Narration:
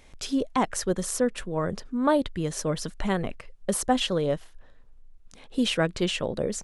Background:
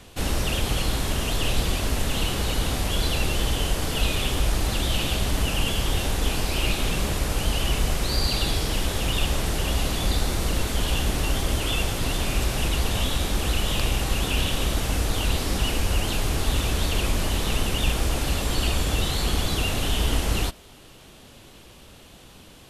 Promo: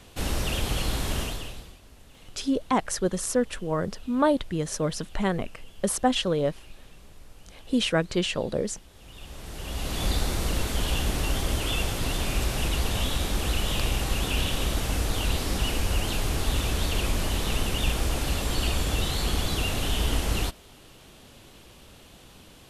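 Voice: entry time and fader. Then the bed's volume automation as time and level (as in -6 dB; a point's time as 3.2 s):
2.15 s, +0.5 dB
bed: 1.21 s -3 dB
1.8 s -27 dB
8.89 s -27 dB
10.03 s -2.5 dB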